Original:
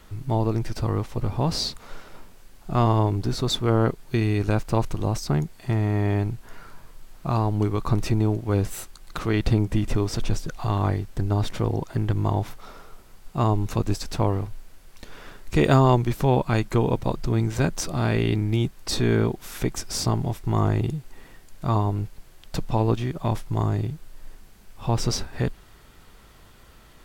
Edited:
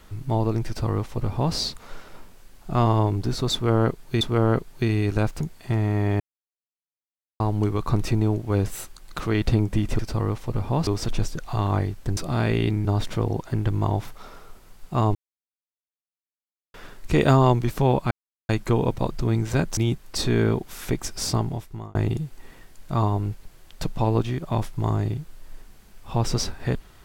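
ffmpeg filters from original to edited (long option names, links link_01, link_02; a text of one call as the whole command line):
ffmpeg -i in.wav -filter_complex "[0:a]asplit=14[link_01][link_02][link_03][link_04][link_05][link_06][link_07][link_08][link_09][link_10][link_11][link_12][link_13][link_14];[link_01]atrim=end=4.212[link_15];[link_02]atrim=start=3.528:end=4.732[link_16];[link_03]atrim=start=5.398:end=6.19,asetpts=PTS-STARTPTS,afade=type=out:start_time=0.788:duration=0.004:curve=hsin[link_17];[link_04]atrim=start=6.19:end=7.39,asetpts=PTS-STARTPTS,volume=0[link_18];[link_05]atrim=start=7.39:end=9.982,asetpts=PTS-STARTPTS,afade=type=in:duration=0.004:curve=hsin[link_19];[link_06]atrim=start=0.668:end=1.552[link_20];[link_07]atrim=start=9.978:end=11.282[link_21];[link_08]atrim=start=17.818:end=18.502[link_22];[link_09]atrim=start=11.278:end=13.58,asetpts=PTS-STARTPTS,afade=type=out:start_time=2.298:duration=0.004:curve=hsin[link_23];[link_10]atrim=start=13.58:end=15.17,asetpts=PTS-STARTPTS,volume=0[link_24];[link_11]atrim=start=15.17:end=16.54,asetpts=PTS-STARTPTS,afade=type=in:duration=0.004:curve=hsin,afade=type=out:start_time=1.366:duration=0.004:curve=hsin,apad=pad_dur=0.38[link_25];[link_12]atrim=start=16.54:end=17.822,asetpts=PTS-STARTPTS,afade=type=in:duration=0.004:curve=hsin[link_26];[link_13]atrim=start=18.498:end=20.68,asetpts=PTS-STARTPTS,afade=type=out:start_time=1.582:duration=0.6[link_27];[link_14]atrim=start=20.68,asetpts=PTS-STARTPTS,afade=type=in:duration=0.004:curve=hsin[link_28];[link_15][link_16]acrossfade=duration=0.004:curve1=hsin:curve2=hsin[link_29];[link_17][link_18][link_19]concat=n=3:v=0:a=1[link_30];[link_29][link_30]acrossfade=duration=0.004:curve1=hsin:curve2=hsin[link_31];[link_31][link_20]acrossfade=duration=0.004:curve1=hsin:curve2=hsin[link_32];[link_32][link_21]acrossfade=duration=0.004:curve1=hsin:curve2=hsin[link_33];[link_33][link_22]acrossfade=duration=0.004:curve1=hsin:curve2=hsin[link_34];[link_23][link_24][link_25][link_26]concat=n=4:v=0:a=1[link_35];[link_34][link_35]acrossfade=duration=0.004:curve1=hsin:curve2=hsin[link_36];[link_27][link_28]concat=n=2:v=0:a=1[link_37];[link_36][link_37]acrossfade=duration=0.004:curve1=hsin:curve2=hsin" out.wav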